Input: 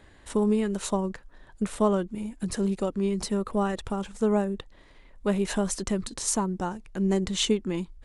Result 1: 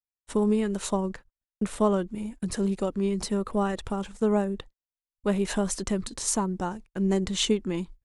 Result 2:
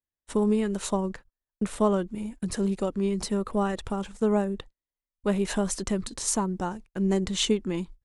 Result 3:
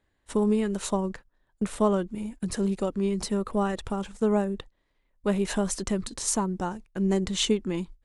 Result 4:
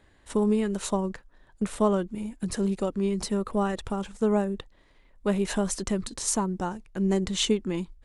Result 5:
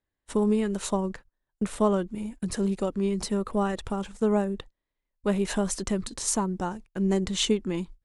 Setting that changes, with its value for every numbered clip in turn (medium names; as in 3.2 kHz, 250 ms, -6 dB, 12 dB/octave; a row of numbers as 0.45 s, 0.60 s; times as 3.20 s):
gate, range: -57 dB, -45 dB, -19 dB, -6 dB, -32 dB